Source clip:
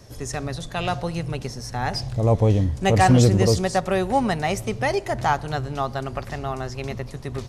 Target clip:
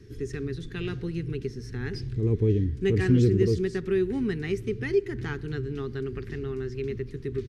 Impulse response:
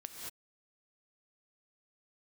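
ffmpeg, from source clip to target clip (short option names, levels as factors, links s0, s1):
-filter_complex "[0:a]firequalizer=gain_entry='entry(210,0);entry(410,8);entry(590,-29);entry(1600,-3);entry(7200,-15)':delay=0.05:min_phase=1,asplit=2[s0][s1];[s1]acompressor=threshold=0.0316:ratio=6,volume=0.708[s2];[s0][s2]amix=inputs=2:normalize=0,volume=0.473"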